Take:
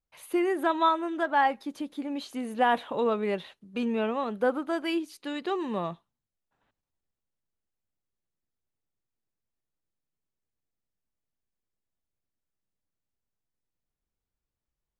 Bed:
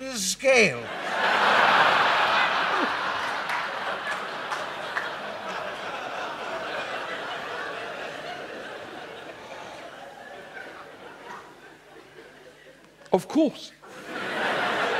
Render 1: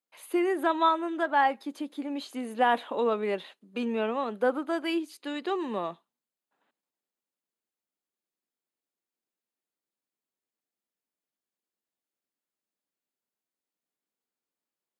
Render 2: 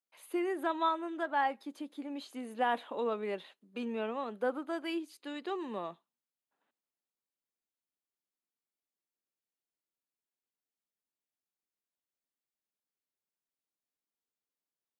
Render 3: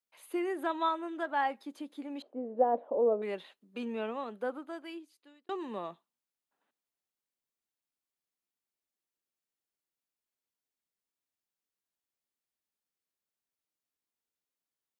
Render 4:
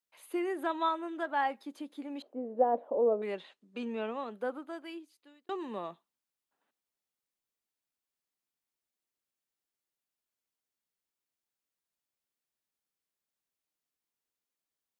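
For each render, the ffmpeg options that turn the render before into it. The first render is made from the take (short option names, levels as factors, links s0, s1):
-af "highpass=f=220:w=0.5412,highpass=f=220:w=1.3066,bandreject=f=5700:w=11"
-af "volume=0.447"
-filter_complex "[0:a]asettb=1/sr,asplit=3[s0][s1][s2];[s0]atrim=end=2.224[s3];[s1]atrim=start=2.22:end=3.22,asetpts=PTS-STARTPTS,afade=t=in:d=0.004:c=qsin,afade=t=out:st=0.996:d=0.004:c=qsin,lowpass=f=580:t=q:w=3.5[s4];[s2]atrim=start=3.216[s5];[s3][s4]acrossfade=d=0.004:c1=hsin:c2=qsin[s6];[s6][s5]acrossfade=d=0.004:c1=qsin:c2=hsin,asplit=2[s7][s8];[s7]atrim=end=5.49,asetpts=PTS-STARTPTS,afade=t=out:st=4.1:d=1.39[s9];[s8]atrim=start=5.49,asetpts=PTS-STARTPTS,afade=t=in:d=0.004:c=hsin[s10];[s9][s10]concat=n=2:v=0:a=1"
-filter_complex "[0:a]asettb=1/sr,asplit=3[s0][s1][s2];[s0]atrim=end=3.334[s3];[s1]atrim=start=3.33:end=4.31,asetpts=PTS-STARTPTS,afade=t=in:d=0.004:c=qsin,afade=t=out:st=0.976:d=0.004:c=qsin,lowpass=f=8900:w=0.5412,lowpass=f=8900:w=1.3066[s4];[s2]atrim=start=4.306[s5];[s3][s4]acrossfade=d=0.004:c1=hsin:c2=qsin[s6];[s6][s5]acrossfade=d=0.004:c1=qsin:c2=hsin"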